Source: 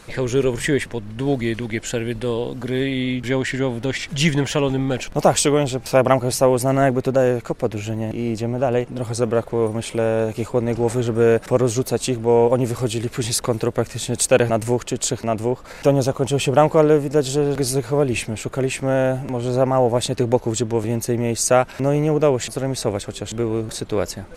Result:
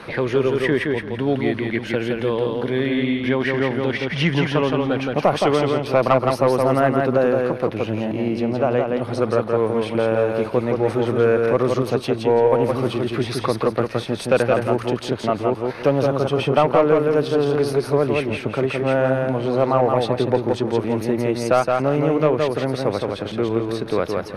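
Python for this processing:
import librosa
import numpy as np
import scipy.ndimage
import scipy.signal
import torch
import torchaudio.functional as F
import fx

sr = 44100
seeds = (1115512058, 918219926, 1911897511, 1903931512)

p1 = fx.highpass(x, sr, hz=160.0, slope=6)
p2 = fx.dynamic_eq(p1, sr, hz=1200.0, q=2.7, threshold_db=-39.0, ratio=4.0, max_db=6)
p3 = np.convolve(p2, np.full(6, 1.0 / 6))[:len(p2)]
p4 = 10.0 ** (-4.5 / 20.0) * np.tanh(p3 / 10.0 ** (-4.5 / 20.0))
p5 = p4 + fx.echo_feedback(p4, sr, ms=168, feedback_pct=21, wet_db=-4.0, dry=0)
y = fx.band_squash(p5, sr, depth_pct=40)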